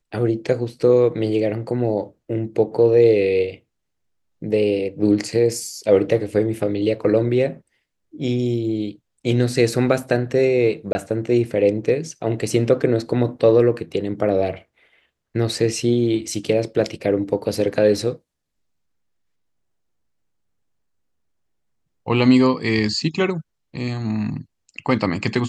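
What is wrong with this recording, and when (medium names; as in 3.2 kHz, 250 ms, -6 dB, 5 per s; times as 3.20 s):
10.93–10.95 s: dropout 20 ms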